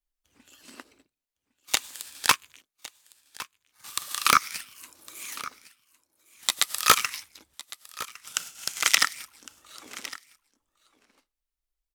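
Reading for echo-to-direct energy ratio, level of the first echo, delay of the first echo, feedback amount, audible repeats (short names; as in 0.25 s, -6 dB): -17.5 dB, -17.5 dB, 1.108 s, no steady repeat, 1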